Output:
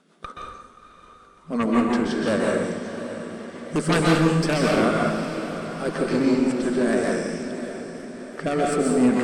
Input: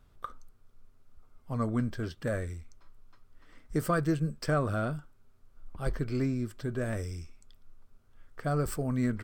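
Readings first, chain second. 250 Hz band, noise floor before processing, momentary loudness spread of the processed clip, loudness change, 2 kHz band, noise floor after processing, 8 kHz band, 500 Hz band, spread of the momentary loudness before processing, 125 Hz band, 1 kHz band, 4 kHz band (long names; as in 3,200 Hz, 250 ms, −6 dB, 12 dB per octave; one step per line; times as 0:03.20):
+12.0 dB, −62 dBFS, 16 LU, +9.5 dB, +12.5 dB, −51 dBFS, +12.5 dB, +12.5 dB, 14 LU, +3.5 dB, +11.0 dB, +17.0 dB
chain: brick-wall band-pass 160–11,000 Hz
harmonic generator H 3 −10 dB, 5 −6 dB, 6 −18 dB, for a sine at −16.5 dBFS
rotating-speaker cabinet horn 5.5 Hz, later 0.9 Hz, at 0:06.54
on a send: feedback delay with all-pass diffusion 650 ms, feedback 54%, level −11 dB
on the sum: dense smooth reverb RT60 1.1 s, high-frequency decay 0.8×, pre-delay 115 ms, DRR −2.5 dB
feedback echo with a swinging delay time 336 ms, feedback 73%, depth 142 cents, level −22.5 dB
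level +5 dB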